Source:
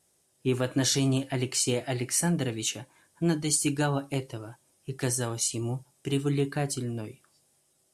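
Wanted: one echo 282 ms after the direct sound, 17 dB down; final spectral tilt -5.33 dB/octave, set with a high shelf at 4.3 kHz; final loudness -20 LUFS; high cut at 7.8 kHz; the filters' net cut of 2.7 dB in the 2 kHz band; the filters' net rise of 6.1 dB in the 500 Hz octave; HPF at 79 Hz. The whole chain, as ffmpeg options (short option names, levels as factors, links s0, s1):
-af "highpass=79,lowpass=7800,equalizer=f=500:t=o:g=8,equalizer=f=2000:t=o:g=-3.5,highshelf=f=4300:g=-3,aecho=1:1:282:0.141,volume=2.37"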